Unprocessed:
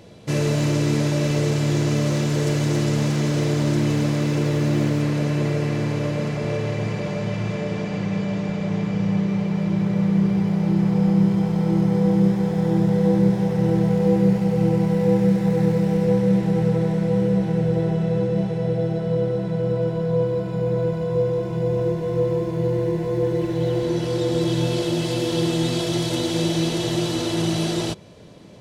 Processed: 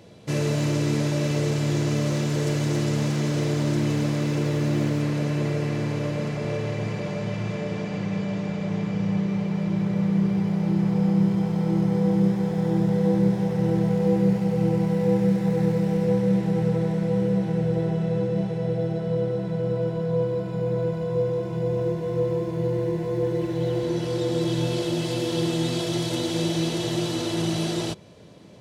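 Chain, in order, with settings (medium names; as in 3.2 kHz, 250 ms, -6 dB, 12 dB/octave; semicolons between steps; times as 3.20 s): high-pass 61 Hz; trim -3 dB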